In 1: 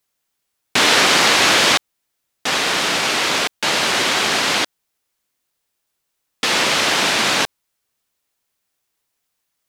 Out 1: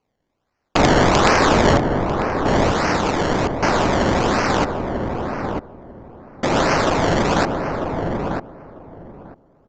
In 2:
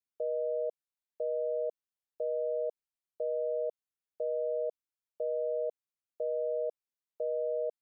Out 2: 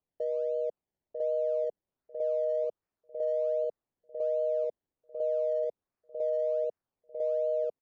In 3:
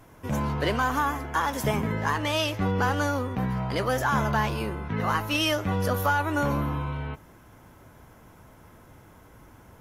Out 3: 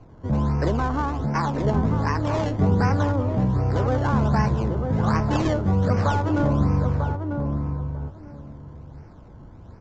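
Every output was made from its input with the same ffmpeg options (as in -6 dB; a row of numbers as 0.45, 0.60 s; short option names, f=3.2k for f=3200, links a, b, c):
-filter_complex "[0:a]lowshelf=f=240:g=9,acrossover=split=190|1400[a][b][c];[c]acrusher=samples=24:mix=1:aa=0.000001:lfo=1:lforange=24:lforate=1.3[d];[a][b][d]amix=inputs=3:normalize=0,aeval=exprs='(mod(1.5*val(0)+1,2)-1)/1.5':c=same,asplit=2[e][f];[f]adelay=945,lowpass=f=940:p=1,volume=-4dB,asplit=2[g][h];[h]adelay=945,lowpass=f=940:p=1,volume=0.18,asplit=2[i][j];[j]adelay=945,lowpass=f=940:p=1,volume=0.18[k];[e][g][i][k]amix=inputs=4:normalize=0,aresample=16000,aresample=44100"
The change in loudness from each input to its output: -3.5, +3.0, +3.5 LU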